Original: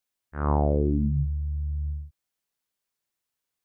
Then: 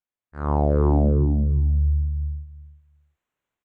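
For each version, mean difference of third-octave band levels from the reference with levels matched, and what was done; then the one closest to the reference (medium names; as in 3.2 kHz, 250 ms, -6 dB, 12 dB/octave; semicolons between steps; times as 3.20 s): 6.5 dB: local Wiener filter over 9 samples; level rider gain up to 12 dB; on a send: feedback delay 353 ms, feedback 16%, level -3.5 dB; on the sum: trim -5.5 dB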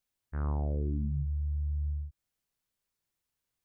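2.0 dB: bass shelf 160 Hz +12 dB; compression 3:1, threshold -32 dBFS, peak gain reduction 14.5 dB; trim -2 dB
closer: second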